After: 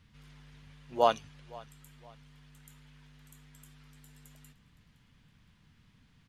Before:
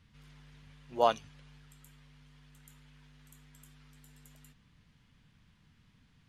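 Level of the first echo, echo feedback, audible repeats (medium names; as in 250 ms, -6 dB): -22.5 dB, 36%, 2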